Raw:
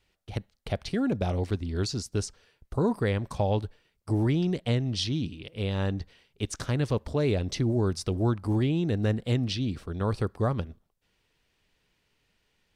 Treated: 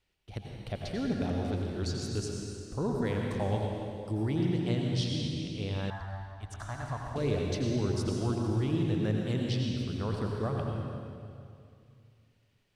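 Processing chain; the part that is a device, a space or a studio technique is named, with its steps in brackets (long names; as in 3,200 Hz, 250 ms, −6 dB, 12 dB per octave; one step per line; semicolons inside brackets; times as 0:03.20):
stairwell (convolution reverb RT60 2.4 s, pre-delay 81 ms, DRR −0.5 dB)
0:05.90–0:07.16: drawn EQ curve 100 Hz 0 dB, 170 Hz −15 dB, 250 Hz −12 dB, 480 Hz −19 dB, 690 Hz +8 dB, 1,800 Hz +1 dB, 2,500 Hz −12 dB, 7,600 Hz −7 dB
level −7 dB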